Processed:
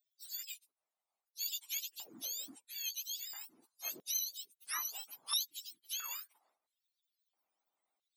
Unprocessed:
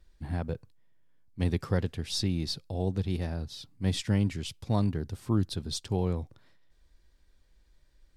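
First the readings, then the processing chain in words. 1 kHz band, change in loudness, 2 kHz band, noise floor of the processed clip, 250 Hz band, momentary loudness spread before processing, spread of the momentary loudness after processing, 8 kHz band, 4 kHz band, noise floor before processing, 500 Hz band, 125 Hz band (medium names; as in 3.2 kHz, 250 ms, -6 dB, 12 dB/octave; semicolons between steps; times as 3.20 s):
-10.5 dB, -8.0 dB, -5.5 dB, under -85 dBFS, -32.5 dB, 10 LU, 12 LU, +5.0 dB, -2.5 dB, -65 dBFS, -30.0 dB, under -40 dB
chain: spectrum inverted on a logarithmic axis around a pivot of 1.1 kHz; harmonic-percussive split harmonic -12 dB; LFO high-pass square 0.75 Hz 920–3700 Hz; trim -5.5 dB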